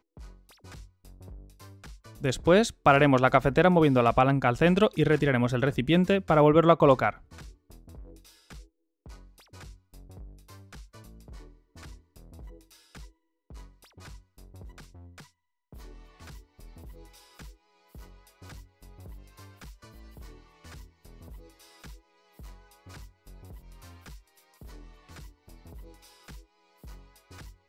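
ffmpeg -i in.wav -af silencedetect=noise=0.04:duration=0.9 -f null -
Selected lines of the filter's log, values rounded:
silence_start: 0.00
silence_end: 2.24 | silence_duration: 2.24
silence_start: 7.10
silence_end: 27.69 | silence_duration: 20.59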